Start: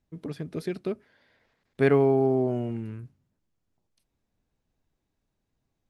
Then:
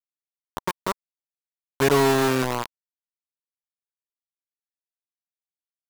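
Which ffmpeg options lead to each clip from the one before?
ffmpeg -i in.wav -af "acrusher=bits=3:mix=0:aa=0.000001,equalizer=frequency=1000:width=3.1:gain=9" out.wav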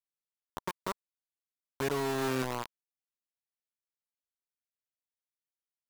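ffmpeg -i in.wav -af "alimiter=limit=-15dB:level=0:latency=1:release=326,volume=-8dB" out.wav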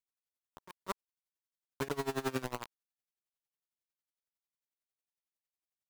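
ffmpeg -i in.wav -af "aeval=exprs='val(0)*pow(10,-22*(0.5-0.5*cos(2*PI*11*n/s))/20)':channel_layout=same,volume=1dB" out.wav

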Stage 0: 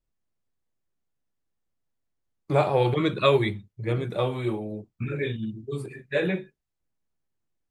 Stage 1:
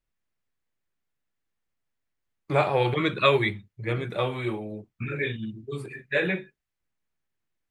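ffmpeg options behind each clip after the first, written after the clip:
ffmpeg -i in.wav -af "equalizer=frequency=2000:width=0.79:gain=8,volume=-2.5dB" out.wav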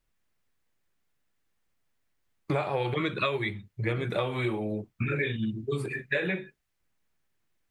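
ffmpeg -i in.wav -af "acompressor=threshold=-31dB:ratio=12,volume=6dB" out.wav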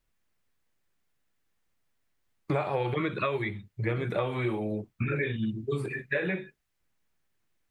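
ffmpeg -i in.wav -filter_complex "[0:a]acrossover=split=2600[link_01][link_02];[link_02]acompressor=threshold=-49dB:ratio=4:attack=1:release=60[link_03];[link_01][link_03]amix=inputs=2:normalize=0" out.wav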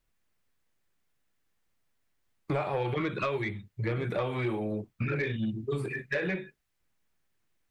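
ffmpeg -i in.wav -af "asoftclip=type=tanh:threshold=-21dB" out.wav

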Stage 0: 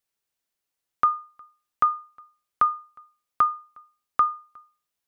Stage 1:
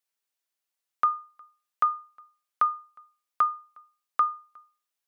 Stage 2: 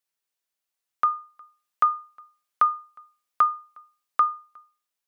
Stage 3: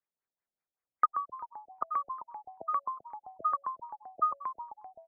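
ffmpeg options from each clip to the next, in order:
ffmpeg -i in.wav -af "highpass=frequency=580:poles=1,volume=-2dB" out.wav
ffmpeg -i in.wav -af "dynaudnorm=framelen=490:gausssize=5:maxgain=3.5dB" out.wav
ffmpeg -i in.wav -filter_complex "[0:a]afreqshift=19,asplit=8[link_01][link_02][link_03][link_04][link_05][link_06][link_07][link_08];[link_02]adelay=130,afreqshift=-97,volume=-10dB[link_09];[link_03]adelay=260,afreqshift=-194,volume=-14.3dB[link_10];[link_04]adelay=390,afreqshift=-291,volume=-18.6dB[link_11];[link_05]adelay=520,afreqshift=-388,volume=-22.9dB[link_12];[link_06]adelay=650,afreqshift=-485,volume=-27.2dB[link_13];[link_07]adelay=780,afreqshift=-582,volume=-31.5dB[link_14];[link_08]adelay=910,afreqshift=-679,volume=-35.8dB[link_15];[link_01][link_09][link_10][link_11][link_12][link_13][link_14][link_15]amix=inputs=8:normalize=0,afftfilt=real='re*lt(b*sr/1024,680*pow(2600/680,0.5+0.5*sin(2*PI*5.2*pts/sr)))':imag='im*lt(b*sr/1024,680*pow(2600/680,0.5+0.5*sin(2*PI*5.2*pts/sr)))':win_size=1024:overlap=0.75,volume=-2dB" out.wav

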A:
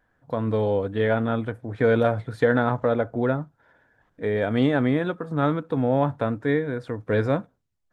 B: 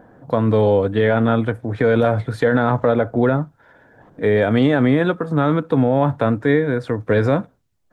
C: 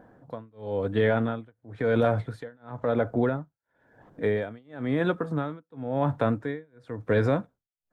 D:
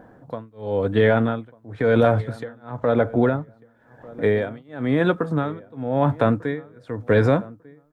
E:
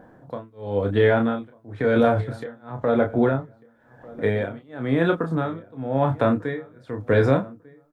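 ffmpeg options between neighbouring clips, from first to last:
ffmpeg -i in.wav -filter_complex "[0:a]acrossover=split=110|860[link_01][link_02][link_03];[link_02]acompressor=mode=upward:threshold=-42dB:ratio=2.5[link_04];[link_01][link_04][link_03]amix=inputs=3:normalize=0,alimiter=level_in=14dB:limit=-1dB:release=50:level=0:latency=1,volume=-5.5dB" out.wav
ffmpeg -i in.wav -af "tremolo=f=0.97:d=0.99,volume=-6dB" out.wav
ffmpeg -i in.wav -filter_complex "[0:a]asplit=2[link_01][link_02];[link_02]adelay=1196,lowpass=frequency=1400:poles=1,volume=-20.5dB,asplit=2[link_03][link_04];[link_04]adelay=1196,lowpass=frequency=1400:poles=1,volume=0.2[link_05];[link_01][link_03][link_05]amix=inputs=3:normalize=0,volume=6dB" out.wav
ffmpeg -i in.wav -filter_complex "[0:a]asplit=2[link_01][link_02];[link_02]adelay=30,volume=-6dB[link_03];[link_01][link_03]amix=inputs=2:normalize=0,volume=-2dB" out.wav

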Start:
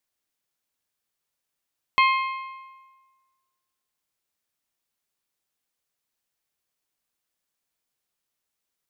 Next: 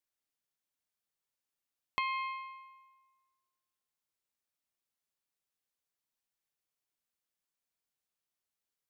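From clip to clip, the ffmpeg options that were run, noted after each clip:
ffmpeg -i in.wav -af "acompressor=threshold=-22dB:ratio=6,volume=-8.5dB" out.wav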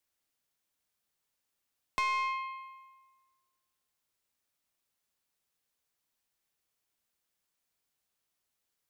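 ffmpeg -i in.wav -filter_complex "[0:a]equalizer=frequency=63:width=1.5:gain=3,acrossover=split=260[link_01][link_02];[link_02]asoftclip=type=tanh:threshold=-31.5dB[link_03];[link_01][link_03]amix=inputs=2:normalize=0,volume=6.5dB" out.wav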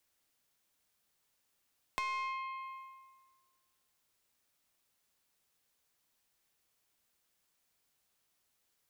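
ffmpeg -i in.wav -af "acompressor=threshold=-46dB:ratio=2.5,volume=5dB" out.wav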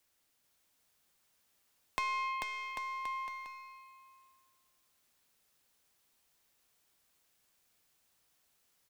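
ffmpeg -i in.wav -af "aecho=1:1:440|792|1074|1299|1479:0.631|0.398|0.251|0.158|0.1,volume=2dB" out.wav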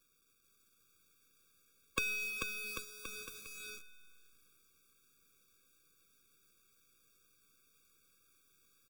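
ffmpeg -i in.wav -af "acrusher=bits=9:dc=4:mix=0:aa=0.000001,afftfilt=real='re*eq(mod(floor(b*sr/1024/550),2),0)':imag='im*eq(mod(floor(b*sr/1024/550),2),0)':win_size=1024:overlap=0.75,volume=8.5dB" out.wav

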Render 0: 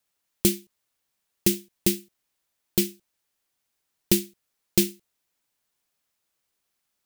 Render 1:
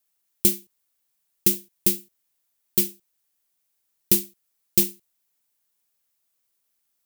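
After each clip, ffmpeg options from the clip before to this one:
ffmpeg -i in.wav -af "highshelf=frequency=7700:gain=11.5,volume=-4dB" out.wav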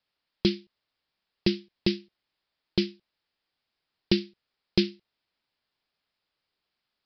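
ffmpeg -i in.wav -af "aresample=11025,aresample=44100,volume=3dB" out.wav

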